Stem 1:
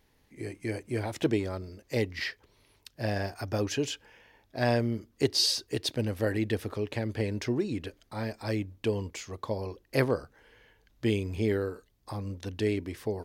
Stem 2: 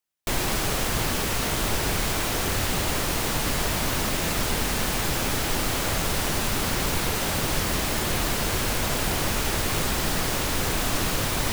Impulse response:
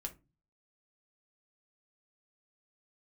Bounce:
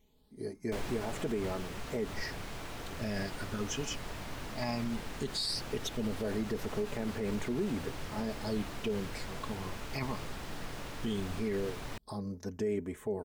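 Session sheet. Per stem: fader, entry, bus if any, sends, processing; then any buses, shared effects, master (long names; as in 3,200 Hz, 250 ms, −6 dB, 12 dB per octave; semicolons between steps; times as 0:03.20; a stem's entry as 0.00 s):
−2.5 dB, 0.00 s, no send, notch filter 2,700 Hz; comb filter 4.7 ms, depth 61%; all-pass phaser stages 8, 0.17 Hz, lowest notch 440–4,800 Hz
−18.5 dB, 0.45 s, send −4.5 dB, speech leveller 2 s; low-pass filter 3,300 Hz 6 dB per octave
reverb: on, RT60 0.30 s, pre-delay 4 ms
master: brickwall limiter −25 dBFS, peak gain reduction 8.5 dB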